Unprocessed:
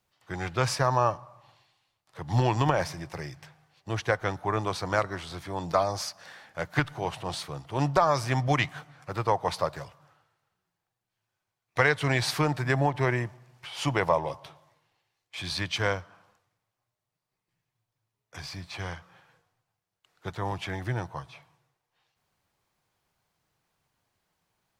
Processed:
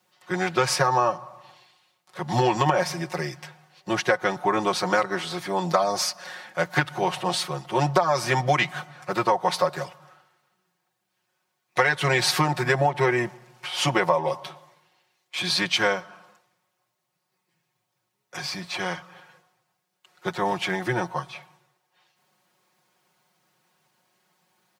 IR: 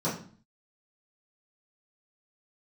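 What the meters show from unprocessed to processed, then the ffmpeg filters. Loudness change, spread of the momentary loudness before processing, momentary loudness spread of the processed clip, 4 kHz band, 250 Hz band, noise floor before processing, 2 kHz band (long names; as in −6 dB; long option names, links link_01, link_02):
+4.0 dB, 16 LU, 13 LU, +7.5 dB, +4.0 dB, −85 dBFS, +5.5 dB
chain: -af "highpass=180,aecho=1:1:5.5:0.91,acompressor=threshold=-24dB:ratio=4,volume=6.5dB"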